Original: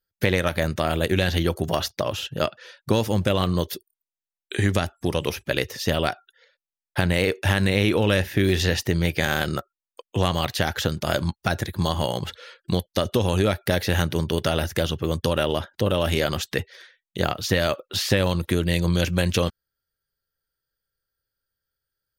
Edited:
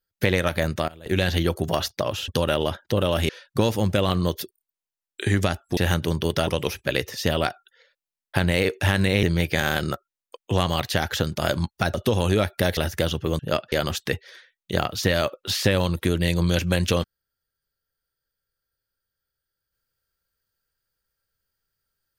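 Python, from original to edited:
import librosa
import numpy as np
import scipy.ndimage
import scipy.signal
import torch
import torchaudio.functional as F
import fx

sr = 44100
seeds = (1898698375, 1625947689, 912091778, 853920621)

y = fx.edit(x, sr, fx.fade_down_up(start_s=0.57, length_s=0.8, db=-21.0, fade_s=0.31, curve='log'),
    fx.swap(start_s=2.28, length_s=0.33, other_s=15.17, other_length_s=1.01),
    fx.cut(start_s=7.85, length_s=1.03),
    fx.cut(start_s=11.59, length_s=1.43),
    fx.move(start_s=13.85, length_s=0.7, to_s=5.09), tone=tone)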